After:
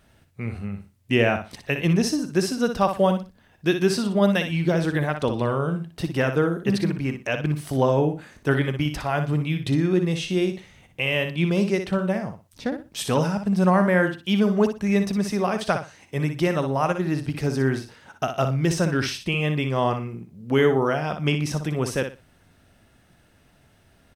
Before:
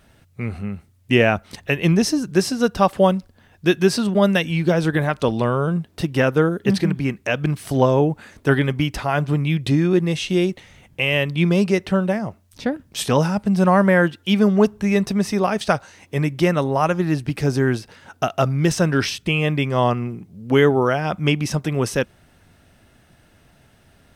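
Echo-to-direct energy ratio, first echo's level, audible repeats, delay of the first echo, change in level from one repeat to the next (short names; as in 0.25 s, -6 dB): -8.0 dB, -8.0 dB, 3, 60 ms, -13.0 dB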